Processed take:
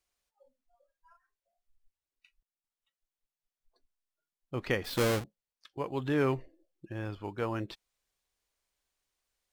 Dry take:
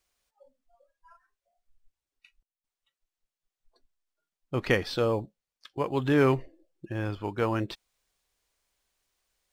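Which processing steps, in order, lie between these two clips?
0:04.84–0:05.24: each half-wave held at its own peak
tape wow and flutter 22 cents
level −6 dB

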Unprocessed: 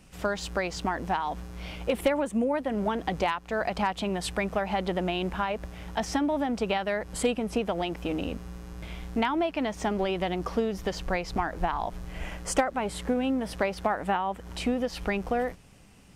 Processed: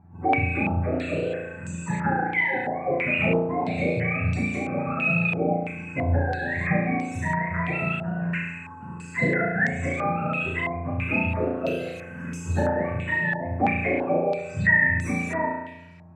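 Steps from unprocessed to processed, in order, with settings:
frequency axis turned over on the octave scale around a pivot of 680 Hz
phaser swept by the level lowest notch 550 Hz, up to 1,300 Hz, full sweep at −24.5 dBFS
on a send: flutter between parallel walls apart 6 metres, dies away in 0.94 s
on the sum: low-pass on a step sequencer 3 Hz 750–5,800 Hz
level +2.5 dB

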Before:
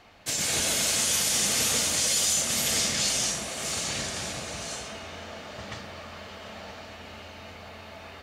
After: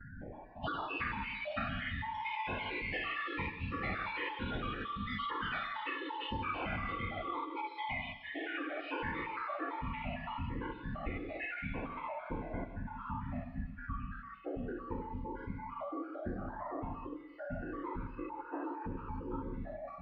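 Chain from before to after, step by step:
time-frequency cells dropped at random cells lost 73%
noise gate with hold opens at −51 dBFS
low-pass filter 5,000 Hz 12 dB per octave
downward compressor 6 to 1, threshold −48 dBFS, peak gain reduction 18.5 dB
change of speed 0.411×
on a send at −9 dB: convolution reverb RT60 0.60 s, pre-delay 92 ms
on the sum: formants moved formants −2 semitones
delay with a high-pass on its return 336 ms, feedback 42%, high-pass 2,600 Hz, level −9.5 dB
level +11 dB

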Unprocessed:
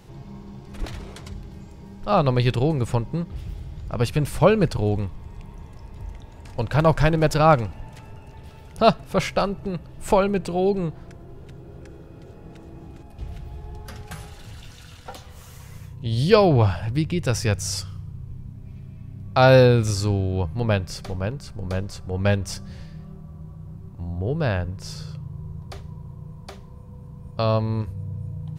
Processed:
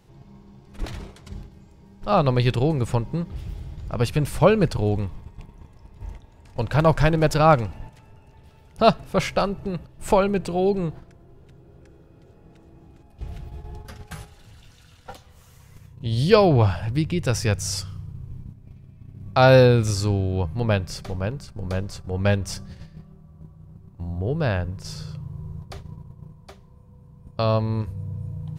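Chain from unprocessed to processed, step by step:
noise gate −36 dBFS, range −8 dB

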